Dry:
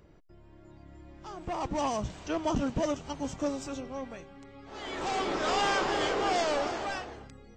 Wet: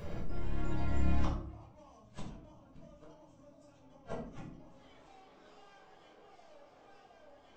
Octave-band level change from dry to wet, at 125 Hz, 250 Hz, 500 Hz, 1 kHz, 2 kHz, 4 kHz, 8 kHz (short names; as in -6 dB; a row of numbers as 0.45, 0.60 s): +2.0, -9.5, -17.0, -18.5, -19.0, -22.0, -22.0 dB